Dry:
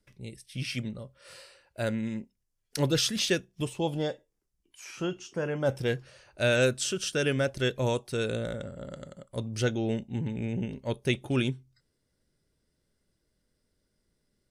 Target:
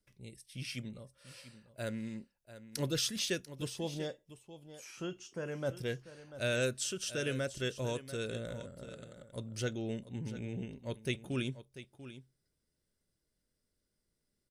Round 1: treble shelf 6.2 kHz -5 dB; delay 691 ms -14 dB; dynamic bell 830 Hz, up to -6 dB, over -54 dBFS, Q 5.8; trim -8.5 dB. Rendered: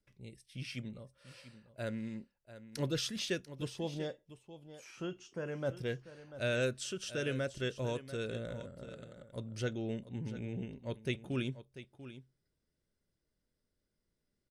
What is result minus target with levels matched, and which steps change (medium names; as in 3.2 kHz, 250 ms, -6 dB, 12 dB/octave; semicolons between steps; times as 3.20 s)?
8 kHz band -5.5 dB
change: treble shelf 6.2 kHz +6.5 dB